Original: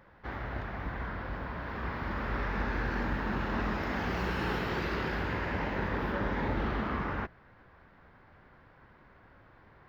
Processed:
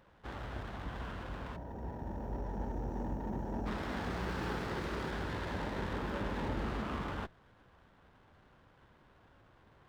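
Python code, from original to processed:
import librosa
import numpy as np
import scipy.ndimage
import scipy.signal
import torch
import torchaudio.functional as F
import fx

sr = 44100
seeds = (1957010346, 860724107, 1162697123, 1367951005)

y = fx.spec_erase(x, sr, start_s=1.56, length_s=2.1, low_hz=1000.0, high_hz=5400.0)
y = fx.running_max(y, sr, window=9)
y = y * 10.0 ** (-4.5 / 20.0)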